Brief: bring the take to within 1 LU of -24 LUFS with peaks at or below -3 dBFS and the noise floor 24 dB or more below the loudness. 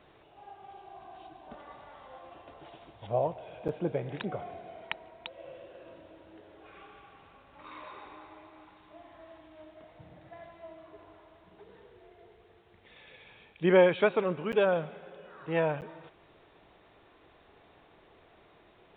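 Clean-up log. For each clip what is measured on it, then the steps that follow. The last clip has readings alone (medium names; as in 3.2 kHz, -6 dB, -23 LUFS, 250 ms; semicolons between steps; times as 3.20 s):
dropouts 3; longest dropout 8.7 ms; loudness -29.5 LUFS; peak level -10.0 dBFS; loudness target -24.0 LUFS
-> interpolate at 3.68/14.52/15.81 s, 8.7 ms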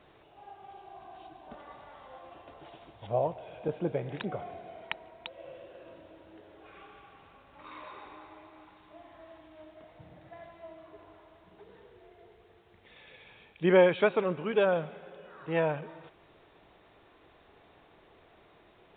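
dropouts 0; loudness -29.5 LUFS; peak level -10.0 dBFS; loudness target -24.0 LUFS
-> trim +5.5 dB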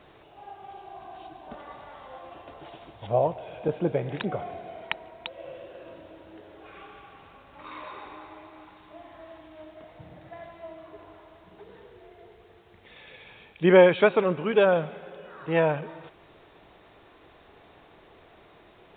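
loudness -24.0 LUFS; peak level -4.5 dBFS; noise floor -55 dBFS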